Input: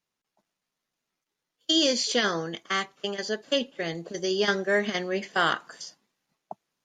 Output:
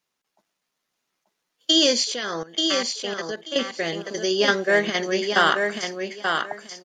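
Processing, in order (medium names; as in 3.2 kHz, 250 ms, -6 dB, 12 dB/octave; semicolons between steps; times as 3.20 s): bass shelf 170 Hz -10 dB; 2.04–3.56 s: level held to a coarse grid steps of 17 dB; feedback delay 884 ms, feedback 19%, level -5 dB; trim +5.5 dB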